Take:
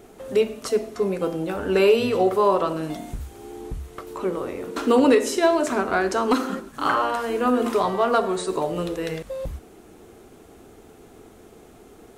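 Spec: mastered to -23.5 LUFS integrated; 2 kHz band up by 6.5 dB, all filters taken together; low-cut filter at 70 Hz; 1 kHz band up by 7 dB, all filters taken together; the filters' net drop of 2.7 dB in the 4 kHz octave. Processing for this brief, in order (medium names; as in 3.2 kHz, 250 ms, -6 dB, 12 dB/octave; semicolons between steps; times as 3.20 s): high-pass 70 Hz; peaking EQ 1 kHz +7 dB; peaking EQ 2 kHz +8 dB; peaking EQ 4 kHz -8.5 dB; trim -4.5 dB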